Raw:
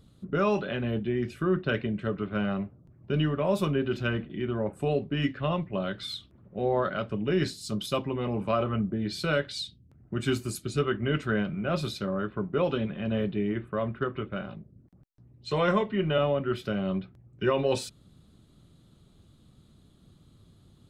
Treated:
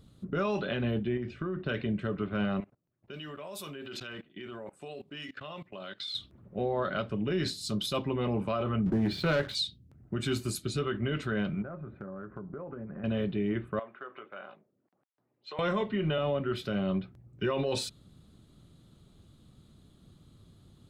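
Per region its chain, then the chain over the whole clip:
0:01.17–0:01.66: downward compressor 10 to 1, threshold −29 dBFS + high-frequency loss of the air 170 metres
0:02.60–0:06.15: low-pass that shuts in the quiet parts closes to 2,300 Hz, open at −23 dBFS + RIAA equalisation recording + output level in coarse steps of 21 dB
0:08.86–0:09.55: low-pass filter 2,200 Hz + leveller curve on the samples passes 2
0:11.62–0:13.04: Butterworth low-pass 1,700 Hz + downward compressor 10 to 1, threshold −37 dBFS
0:13.79–0:15.59: high-shelf EQ 3,200 Hz −11 dB + downward compressor 5 to 1, threshold −32 dBFS + band-pass filter 650–4,500 Hz
whole clip: dynamic equaliser 3,900 Hz, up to +5 dB, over −52 dBFS, Q 2.9; brickwall limiter −21.5 dBFS

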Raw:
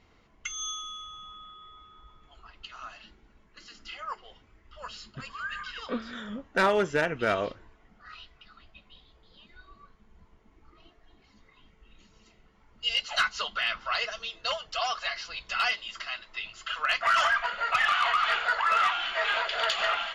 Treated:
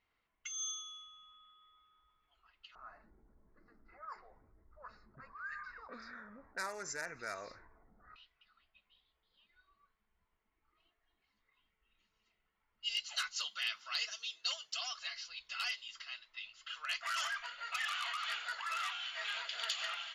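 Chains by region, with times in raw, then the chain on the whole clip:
0:02.75–0:08.16: Butterworth band-reject 3,100 Hz, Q 1.3 + low-pass that shuts in the quiet parts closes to 410 Hz, open at −26.5 dBFS + envelope flattener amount 50%
0:13.36–0:14.81: high-pass filter 160 Hz + high-shelf EQ 3,900 Hz +7 dB
whole clip: first-order pre-emphasis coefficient 0.97; low-pass that shuts in the quiet parts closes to 2,100 Hz, open at −35.5 dBFS; low-shelf EQ 130 Hz +7 dB; level −1.5 dB

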